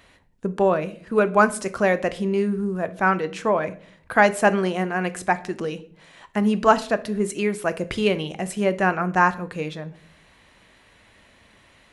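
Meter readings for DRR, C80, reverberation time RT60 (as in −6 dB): 11.5 dB, 22.0 dB, 0.55 s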